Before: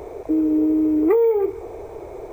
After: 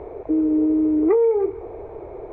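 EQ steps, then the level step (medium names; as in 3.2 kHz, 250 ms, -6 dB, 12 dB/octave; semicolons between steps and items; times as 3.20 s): distance through air 170 m; treble shelf 4 kHz -7.5 dB; peaking EQ 5.1 kHz -9 dB 0.99 oct; 0.0 dB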